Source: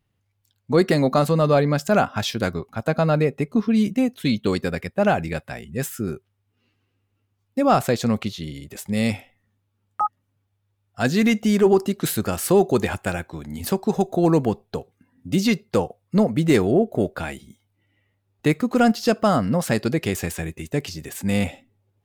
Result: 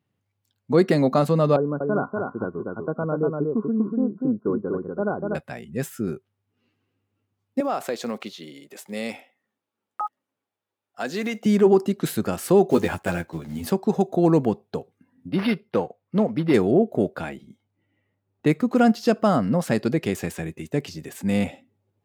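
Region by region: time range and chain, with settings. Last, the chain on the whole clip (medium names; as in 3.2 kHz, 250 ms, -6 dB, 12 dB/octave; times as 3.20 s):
1.56–5.35 s: rippled Chebyshev low-pass 1.5 kHz, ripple 9 dB + delay 242 ms -3.5 dB
7.60–11.46 s: block-companded coder 7-bit + high-pass 370 Hz + compression 2.5:1, threshold -22 dBFS
12.70–13.70 s: block-companded coder 5-bit + doubling 12 ms -4 dB
15.29–16.54 s: level-controlled noise filter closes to 2.6 kHz, open at -13 dBFS + tilt EQ +1.5 dB/octave + decimation joined by straight lines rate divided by 6×
17.29–18.47 s: treble shelf 4 kHz -9.5 dB + decimation joined by straight lines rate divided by 2×
whole clip: high-pass 160 Hz 12 dB/octave; tilt EQ -1.5 dB/octave; trim -2 dB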